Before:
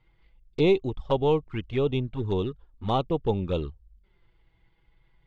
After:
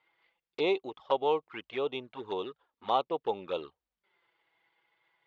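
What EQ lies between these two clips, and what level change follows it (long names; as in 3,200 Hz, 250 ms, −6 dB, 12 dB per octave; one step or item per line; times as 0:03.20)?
high-pass filter 660 Hz 12 dB per octave
dynamic equaliser 2,200 Hz, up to −3 dB, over −44 dBFS, Q 0.88
high-frequency loss of the air 130 metres
+2.5 dB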